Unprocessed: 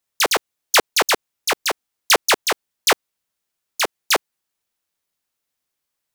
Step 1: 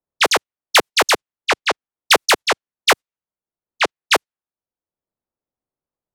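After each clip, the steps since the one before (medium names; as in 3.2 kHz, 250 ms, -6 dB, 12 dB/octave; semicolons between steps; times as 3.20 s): gate -24 dBFS, range -14 dB; level-controlled noise filter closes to 710 Hz, open at -13.5 dBFS; three bands compressed up and down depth 40%; trim +3 dB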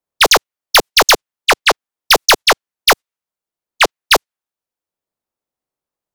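waveshaping leveller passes 1; hard clipper -11.5 dBFS, distortion -9 dB; bass shelf 410 Hz -7 dB; trim +7 dB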